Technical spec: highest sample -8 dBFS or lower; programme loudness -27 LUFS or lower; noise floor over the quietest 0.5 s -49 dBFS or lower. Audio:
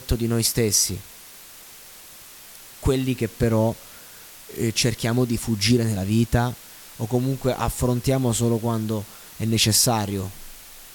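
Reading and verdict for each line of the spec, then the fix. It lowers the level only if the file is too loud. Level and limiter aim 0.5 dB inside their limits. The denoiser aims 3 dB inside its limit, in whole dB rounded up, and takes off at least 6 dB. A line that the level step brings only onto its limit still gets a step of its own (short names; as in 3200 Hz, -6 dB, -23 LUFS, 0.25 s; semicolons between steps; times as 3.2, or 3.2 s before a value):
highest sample -5.0 dBFS: fail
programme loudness -22.0 LUFS: fail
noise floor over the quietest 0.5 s -44 dBFS: fail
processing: gain -5.5 dB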